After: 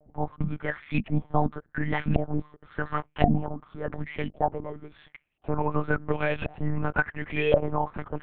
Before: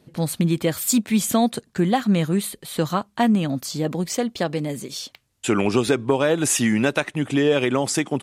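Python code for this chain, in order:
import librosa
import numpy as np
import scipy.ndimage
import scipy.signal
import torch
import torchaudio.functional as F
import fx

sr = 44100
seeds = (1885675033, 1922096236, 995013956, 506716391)

y = x + 0.8 * np.pad(x, (int(4.7 * sr / 1000.0), 0))[:len(x)]
y = fx.filter_lfo_lowpass(y, sr, shape='saw_up', hz=0.93, low_hz=660.0, high_hz=2800.0, q=6.4)
y = fx.lpc_monotone(y, sr, seeds[0], pitch_hz=150.0, order=8)
y = y * 10.0 ** (-11.0 / 20.0)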